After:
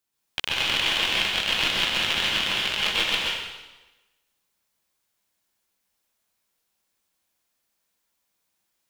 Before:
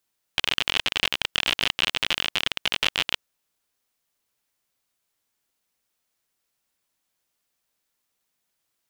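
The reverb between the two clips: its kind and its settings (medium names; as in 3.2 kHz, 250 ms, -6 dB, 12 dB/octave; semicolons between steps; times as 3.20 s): plate-style reverb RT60 1.1 s, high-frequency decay 0.95×, pre-delay 110 ms, DRR -5.5 dB; trim -4.5 dB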